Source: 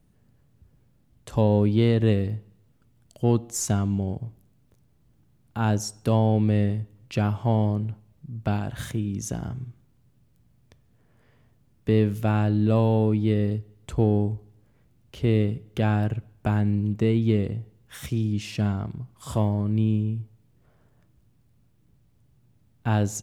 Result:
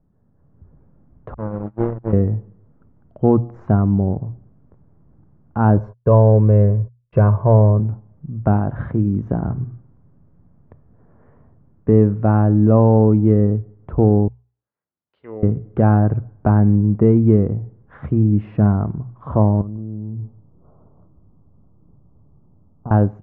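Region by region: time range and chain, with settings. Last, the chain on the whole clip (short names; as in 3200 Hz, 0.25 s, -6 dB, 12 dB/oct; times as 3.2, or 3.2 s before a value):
1.34–2.13 level-crossing sampler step -23 dBFS + comb 6.1 ms, depth 46% + gate -18 dBFS, range -42 dB
5.77–7.8 comb 1.9 ms, depth 69% + gate -41 dBFS, range -39 dB + mismatched tape noise reduction decoder only
14.28–15.43 auto-wah 750–4700 Hz, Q 4.6, down, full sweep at -15.5 dBFS + high shelf 3600 Hz +9 dB
19.61–22.91 steep low-pass 1300 Hz 72 dB/oct + compressor 10:1, threshold -33 dBFS + echo 0.144 s -17 dB
whole clip: LPF 1300 Hz 24 dB/oct; notches 60/120 Hz; AGC gain up to 11 dB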